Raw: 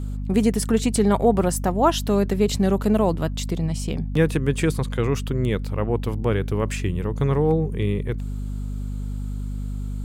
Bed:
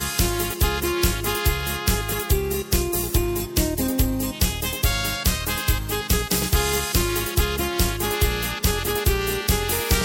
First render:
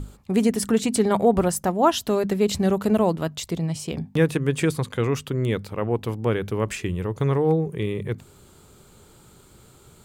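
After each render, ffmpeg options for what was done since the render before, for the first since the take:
-af "bandreject=f=50:t=h:w=6,bandreject=f=100:t=h:w=6,bandreject=f=150:t=h:w=6,bandreject=f=200:t=h:w=6,bandreject=f=250:t=h:w=6"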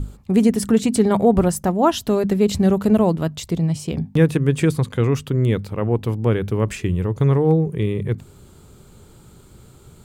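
-af "lowshelf=f=310:g=8"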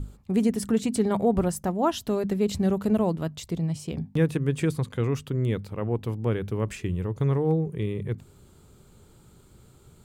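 -af "volume=-7.5dB"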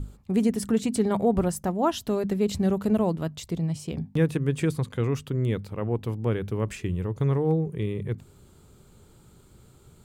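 -af anull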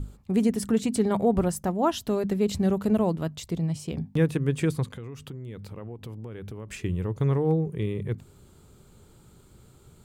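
-filter_complex "[0:a]asettb=1/sr,asplit=3[a][b][c];[a]atrim=end=4.884[d];[b]atrim=start=4.88:end=6.73,asetpts=PTS-STARTPTS,afade=t=in:d=0.004:c=qsin,afade=t=out:st=1.846:d=0.004:c=qsin,acompressor=threshold=-34dB:ratio=16:attack=3.2:release=140:knee=1:detection=peak[e];[c]atrim=start=6.726[f];[d][e]acrossfade=d=0.004:c1=hsin:c2=qsin[g];[g][f]acrossfade=d=0.004:c1=qsin:c2=hsin"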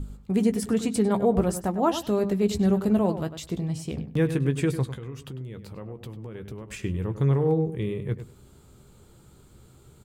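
-filter_complex "[0:a]asplit=2[a][b];[b]adelay=15,volume=-10dB[c];[a][c]amix=inputs=2:normalize=0,asplit=2[d][e];[e]adelay=100,lowpass=f=2.7k:p=1,volume=-10.5dB,asplit=2[f][g];[g]adelay=100,lowpass=f=2.7k:p=1,volume=0.17[h];[d][f][h]amix=inputs=3:normalize=0"

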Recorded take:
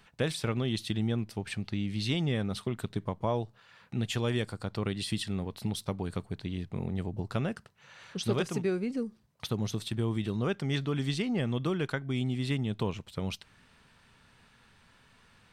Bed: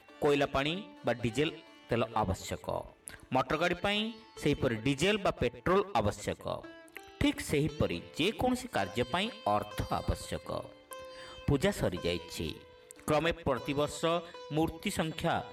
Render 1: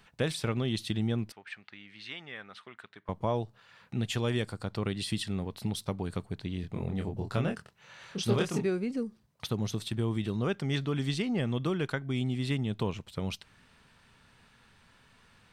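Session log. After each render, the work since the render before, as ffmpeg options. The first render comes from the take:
-filter_complex "[0:a]asettb=1/sr,asplit=3[a][b][c];[a]atrim=end=1.324[d];[b]atrim=start=1.32:end=3.09,asetpts=PTS-STARTPTS,afade=t=in:d=0.004:c=qsin,afade=t=out:st=1.766:d=0.004:c=qsin,bandpass=f=1.7k:t=q:w=1.6[e];[c]atrim=start=3.086[f];[d][e]acrossfade=d=0.004:c1=hsin:c2=qsin[g];[g][f]acrossfade=d=0.004:c1=qsin:c2=hsin,asettb=1/sr,asplit=3[h][i][j];[h]atrim=end=6.614[k];[i]atrim=start=6.61:end=8.66,asetpts=PTS-STARTPTS,afade=t=in:d=0.004:c=qsin,afade=t=out:st=2.046:d=0.004:c=qsin,asplit=2[l][m];[m]adelay=25,volume=-4dB[n];[l][n]amix=inputs=2:normalize=0,atrim=end_sample=90405[o];[j]atrim=start=8.656[p];[k][o]acrossfade=d=0.004:c1=hsin:c2=qsin[q];[q][p]acrossfade=d=0.004:c1=qsin:c2=hsin"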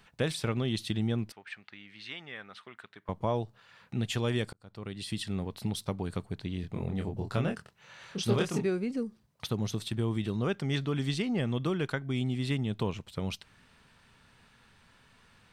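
-filter_complex "[0:a]asplit=2[a][b];[a]atrim=end=4.53,asetpts=PTS-STARTPTS,afade=t=out:st=4.526:d=0.004:c=hsin[c];[b]atrim=start=4.53,asetpts=PTS-STARTPTS,afade=t=in:d=0.84[d];[c][d]concat=n=2:v=0:a=1"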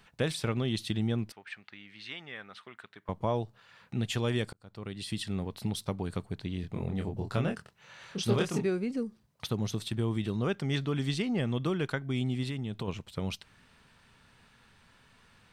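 -filter_complex "[0:a]asettb=1/sr,asplit=3[a][b][c];[a]atrim=end=12.434[d];[b]atrim=start=12.43:end=12.88,asetpts=PTS-STARTPTS,afade=t=in:d=0.004:c=qsin,afade=t=out:st=0.446:d=0.004:c=qsin,acompressor=threshold=-31dB:ratio=6:attack=3.2:release=140:knee=1:detection=peak[e];[c]atrim=start=12.876[f];[d][e]acrossfade=d=0.004:c1=hsin:c2=qsin[g];[g][f]acrossfade=d=0.004:c1=qsin:c2=hsin"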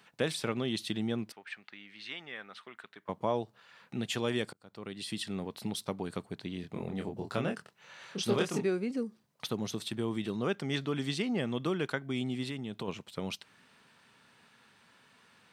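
-af "highpass=190"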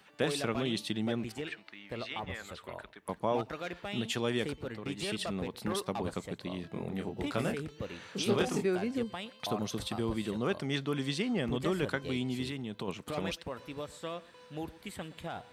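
-filter_complex "[1:a]volume=-9.5dB[a];[0:a][a]amix=inputs=2:normalize=0"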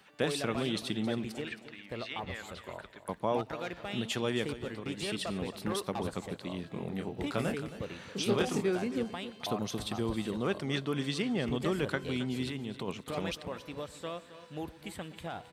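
-af "aecho=1:1:269|538|807:0.2|0.0678|0.0231"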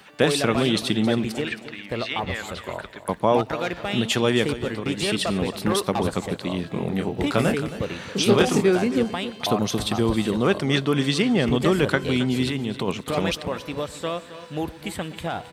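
-af "volume=11.5dB"

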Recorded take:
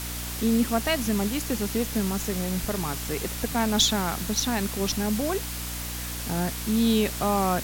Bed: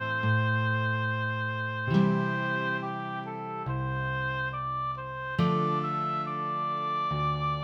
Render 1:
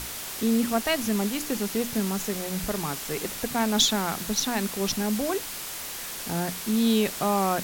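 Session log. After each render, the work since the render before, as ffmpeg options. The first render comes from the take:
-af "bandreject=f=60:t=h:w=6,bandreject=f=120:t=h:w=6,bandreject=f=180:t=h:w=6,bandreject=f=240:t=h:w=6,bandreject=f=300:t=h:w=6"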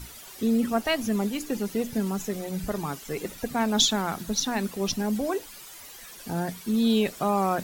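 -af "afftdn=nr=13:nf=-36"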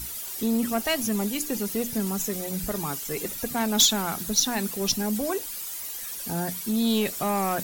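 -af "asoftclip=type=tanh:threshold=-17dB,crystalizer=i=2:c=0"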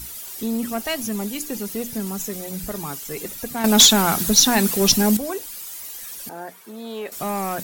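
-filter_complex "[0:a]asettb=1/sr,asplit=3[a][b][c];[a]atrim=end=3.644[d];[b]atrim=start=3.64:end=5.17,asetpts=PTS-STARTPTS,afade=t=in:d=0.004:c=qsin,afade=t=out:st=1.526:d=0.004:c=qsin,aeval=exprs='0.531*sin(PI/2*2*val(0)/0.531)':c=same[e];[c]atrim=start=5.166[f];[d][e]acrossfade=d=0.004:c1=hsin:c2=qsin[g];[g][f]acrossfade=d=0.004:c1=qsin:c2=hsin,asettb=1/sr,asplit=3[h][i][j];[h]atrim=end=6.294[k];[i]atrim=start=6.29:end=7.12,asetpts=PTS-STARTPTS,afade=t=in:d=0.004:c=qsin,afade=t=out:st=0.826:d=0.004:c=qsin,acrossover=split=330 2100:gain=0.0631 1 0.2[l][m][n];[l][m][n]amix=inputs=3:normalize=0[o];[j]atrim=start=7.116[p];[k][o]acrossfade=d=0.004:c1=hsin:c2=qsin[q];[q][p]acrossfade=d=0.004:c1=qsin:c2=hsin"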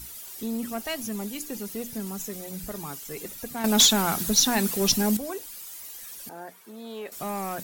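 -af "volume=-6dB"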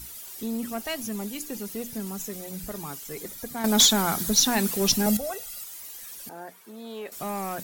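-filter_complex "[0:a]asettb=1/sr,asplit=3[a][b][c];[a]atrim=end=3.144[d];[b]atrim=start=3.14:end=4.35,asetpts=PTS-STARTPTS,afade=t=in:d=0.004:c=qsin,afade=t=out:st=1.206:d=0.004:c=qsin,bandreject=f=2.7k:w=7.7[e];[c]atrim=start=4.346[f];[d][e]acrossfade=d=0.004:c1=hsin:c2=qsin[g];[g][f]acrossfade=d=0.004:c1=qsin:c2=hsin,asettb=1/sr,asplit=3[h][i][j];[h]atrim=end=5.064[k];[i]atrim=start=5.06:end=5.64,asetpts=PTS-STARTPTS,afade=t=in:d=0.004:c=qsin,afade=t=out:st=0.576:d=0.004:c=qsin,aecho=1:1:1.5:0.93,atrim=end_sample=25578[l];[j]atrim=start=5.636[m];[k][l]acrossfade=d=0.004:c1=hsin:c2=qsin[n];[n][m]acrossfade=d=0.004:c1=qsin:c2=hsin"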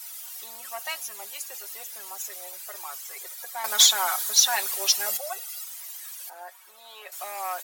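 -af "highpass=f=680:w=0.5412,highpass=f=680:w=1.3066,aecho=1:1:5.4:0.65"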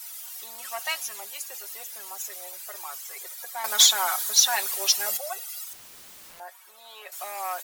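-filter_complex "[0:a]asettb=1/sr,asplit=3[a][b][c];[a]atrim=end=0.584[d];[b]atrim=start=0.58:end=1.2,asetpts=PTS-STARTPTS,afade=t=in:d=0.004:c=qsin,afade=t=out:st=0.616:d=0.004:c=qsin,equalizer=f=2.9k:w=0.31:g=4[e];[c]atrim=start=1.196[f];[d][e]acrossfade=d=0.004:c1=hsin:c2=qsin[g];[g][f]acrossfade=d=0.004:c1=qsin:c2=hsin,asettb=1/sr,asplit=3[h][i][j];[h]atrim=end=5.734[k];[i]atrim=start=5.73:end=6.4,asetpts=PTS-STARTPTS,afade=t=in:d=0.004:c=qsin,afade=t=out:st=0.666:d=0.004:c=qsin,aeval=exprs='(mod(133*val(0)+1,2)-1)/133':c=same[l];[j]atrim=start=6.396[m];[k][l]acrossfade=d=0.004:c1=hsin:c2=qsin[n];[n][m]acrossfade=d=0.004:c1=qsin:c2=hsin"

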